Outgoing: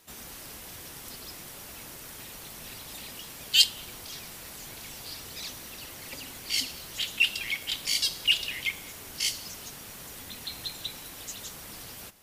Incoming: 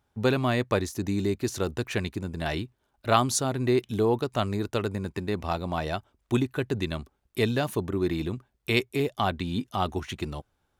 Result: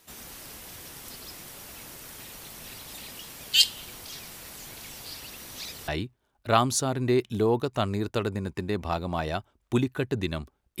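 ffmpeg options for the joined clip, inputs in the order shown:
-filter_complex "[0:a]apad=whole_dur=10.8,atrim=end=10.8,asplit=2[s0][s1];[s0]atrim=end=5.202[s2];[s1]atrim=start=5.198:end=5.882,asetpts=PTS-STARTPTS,areverse[s3];[1:a]atrim=start=2.468:end=7.39[s4];[s2][s3]acrossfade=d=0.004:c1=hsin:c2=hsin[s5];[s5][s4]acrossfade=d=0.004:c1=hsin:c2=hsin"

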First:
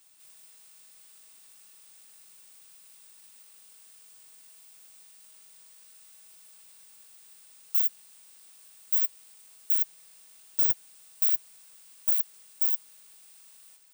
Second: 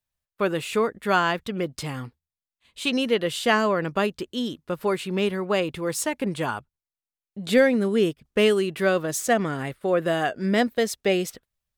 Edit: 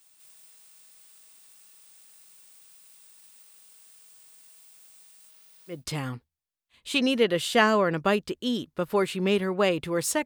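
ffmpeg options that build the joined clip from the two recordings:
-filter_complex "[0:a]asettb=1/sr,asplit=3[s0][s1][s2];[s0]atrim=end=5.294[s3];[s1]atrim=start=5.29:end=5.85,asetpts=PTS-STARTPTS,afade=t=in:d=0.004:c=qsin,afade=t=out:st=0.556:d=0.004:c=qsin,equalizer=f=8100:t=o:w=0.46:g=-7.5[s4];[s2]atrim=start=5.846[s5];[s3][s4]acrossfade=d=0.004:c1=hsin:c2=qsin[s6];[s6][s5]acrossfade=d=0.004:c1=qsin:c2=hsin,apad=whole_dur=10.25,atrim=end=10.25,atrim=end=5.85,asetpts=PTS-STARTPTS[s7];[1:a]atrim=start=1.58:end=6.16,asetpts=PTS-STARTPTS[s8];[s7][s8]acrossfade=d=0.18:c1=tri:c2=tri"

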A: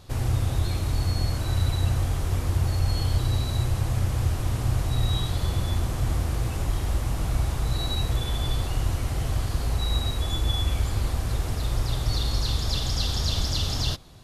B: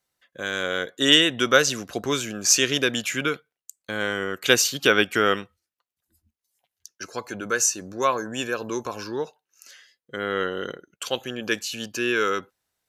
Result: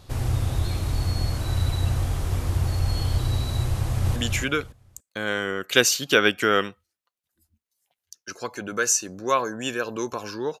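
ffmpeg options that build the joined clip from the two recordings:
-filter_complex "[0:a]apad=whole_dur=10.6,atrim=end=10.6,atrim=end=4.162[s0];[1:a]atrim=start=2.888:end=9.33[s1];[s0][s1]acrossfade=d=0.004:c1=hsin:c2=hsin,asplit=2[s2][s3];[s3]afade=t=in:st=3.76:d=0.01,afade=t=out:st=4.16:d=0.01,aecho=0:1:280|560|840:0.668344|0.133669|0.0267338[s4];[s2][s4]amix=inputs=2:normalize=0"

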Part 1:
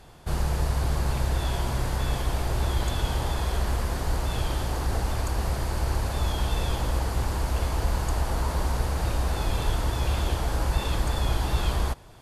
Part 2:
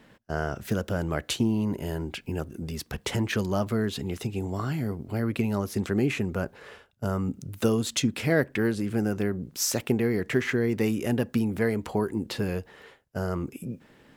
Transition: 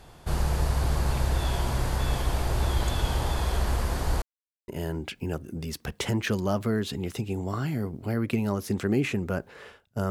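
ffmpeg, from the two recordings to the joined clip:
-filter_complex "[0:a]apad=whole_dur=10.1,atrim=end=10.1,asplit=2[s0][s1];[s0]atrim=end=4.22,asetpts=PTS-STARTPTS,afade=t=out:st=4.216:d=0.004:c=hsin[s2];[s1]atrim=start=4.22:end=4.68,asetpts=PTS-STARTPTS,volume=0[s3];[1:a]atrim=start=1.74:end=7.16,asetpts=PTS-STARTPTS,afade=t=in:d=0.004:c=hsin[s4];[s2][s3][s4]concat=n=3:v=0:a=1"

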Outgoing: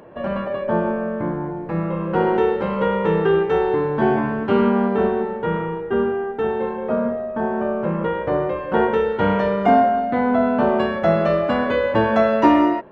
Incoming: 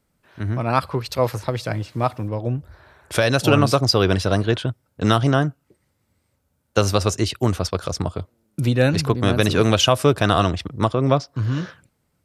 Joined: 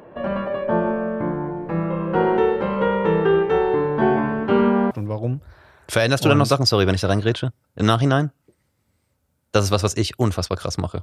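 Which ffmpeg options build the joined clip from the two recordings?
-filter_complex "[0:a]apad=whole_dur=11.02,atrim=end=11.02,atrim=end=4.912[s0];[1:a]atrim=start=2.128:end=8.24[s1];[s0][s1]acrossfade=d=0.004:c1=hsin:c2=hsin"

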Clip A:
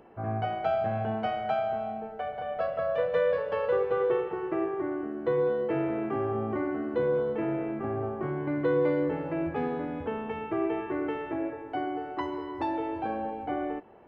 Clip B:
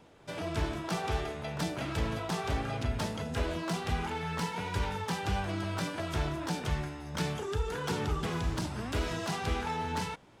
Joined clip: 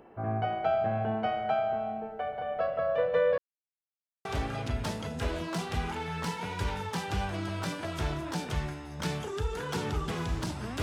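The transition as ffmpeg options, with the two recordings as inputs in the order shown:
-filter_complex "[0:a]apad=whole_dur=10.82,atrim=end=10.82,asplit=2[s0][s1];[s0]atrim=end=3.38,asetpts=PTS-STARTPTS,afade=t=out:st=3.376:d=0.004:c=hsin[s2];[s1]atrim=start=3.38:end=4.25,asetpts=PTS-STARTPTS,volume=0[s3];[1:a]atrim=start=2.4:end=8.97,asetpts=PTS-STARTPTS,afade=t=in:d=0.004:c=hsin[s4];[s2][s3][s4]concat=n=3:v=0:a=1"

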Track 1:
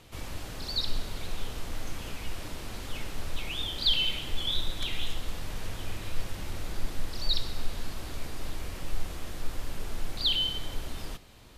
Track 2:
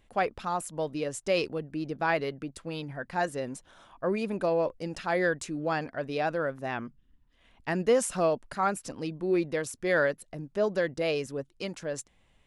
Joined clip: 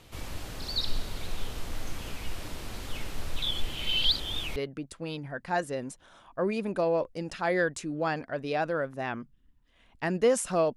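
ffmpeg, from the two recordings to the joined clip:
-filter_complex "[0:a]apad=whole_dur=10.76,atrim=end=10.76,asplit=2[s0][s1];[s0]atrim=end=3.422[s2];[s1]atrim=start=3.418:end=4.562,asetpts=PTS-STARTPTS,areverse[s3];[1:a]atrim=start=2.208:end=8.41[s4];[s2][s3]acrossfade=d=0.004:c1=hsin:c2=hsin[s5];[s5][s4]acrossfade=d=0.004:c1=hsin:c2=hsin"

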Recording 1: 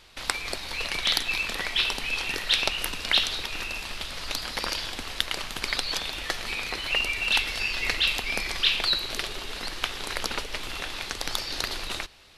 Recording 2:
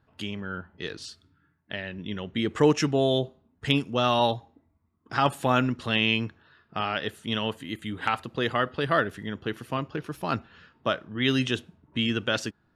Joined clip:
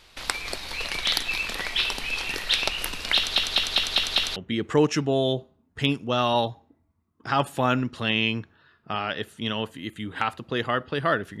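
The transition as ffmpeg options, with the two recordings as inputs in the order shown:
-filter_complex "[0:a]apad=whole_dur=11.4,atrim=end=11.4,asplit=6[s0][s1][s2][s3][s4][s5];[s0]atrim=end=3.362[s6];[s1]atrim=start=3.158:end=3.362[s7];[s2]atrim=start=3.158:end=3.362[s8];[s3]atrim=start=3.158:end=3.362[s9];[s4]atrim=start=3.158:end=3.362[s10];[s5]atrim=start=3.158:end=3.362[s11];[1:a]atrim=start=2.218:end=9.26[s12];[s6][s7]acrossfade=d=0.004:c1=hsin:c2=hsin[s13];[s13][s8]acrossfade=d=0.004:c1=hsin:c2=hsin[s14];[s14][s9]acrossfade=d=0.004:c1=hsin:c2=hsin[s15];[s15][s10]acrossfade=d=0.004:c1=hsin:c2=hsin[s16];[s16][s11]acrossfade=d=0.004:c1=hsin:c2=hsin[s17];[s17][s12]acrossfade=d=0.004:c1=hsin:c2=hsin"

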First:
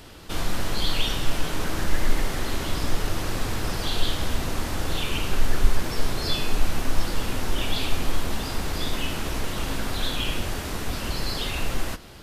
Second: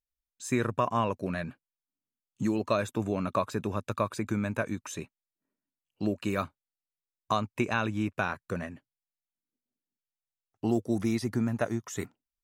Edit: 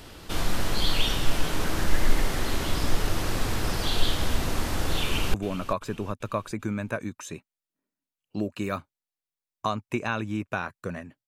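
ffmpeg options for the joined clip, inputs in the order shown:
-filter_complex "[0:a]apad=whole_dur=11.27,atrim=end=11.27,atrim=end=5.342[s0];[1:a]atrim=start=2.998:end=8.93[s1];[s0][s1]acrossfade=d=0.004:c1=hsin:c2=hsin,asplit=2[s2][s3];[s3]afade=t=in:st=5.03:d=0.01,afade=t=out:st=5.34:d=0.01,aecho=0:1:390|780|1170|1560:0.188365|0.075346|0.0301384|0.0120554[s4];[s2][s4]amix=inputs=2:normalize=0"

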